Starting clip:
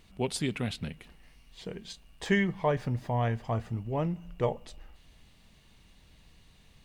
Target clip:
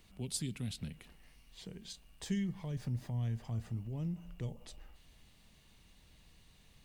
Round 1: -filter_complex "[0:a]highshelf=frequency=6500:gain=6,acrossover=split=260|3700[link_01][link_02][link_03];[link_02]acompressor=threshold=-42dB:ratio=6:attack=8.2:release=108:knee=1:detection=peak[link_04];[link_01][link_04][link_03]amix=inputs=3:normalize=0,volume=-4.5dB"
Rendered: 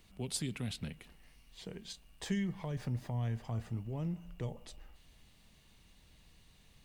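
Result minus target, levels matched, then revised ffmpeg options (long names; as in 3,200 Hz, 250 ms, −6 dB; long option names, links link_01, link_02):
downward compressor: peak gain reduction −8 dB
-filter_complex "[0:a]highshelf=frequency=6500:gain=6,acrossover=split=260|3700[link_01][link_02][link_03];[link_02]acompressor=threshold=-51.5dB:ratio=6:attack=8.2:release=108:knee=1:detection=peak[link_04];[link_01][link_04][link_03]amix=inputs=3:normalize=0,volume=-4.5dB"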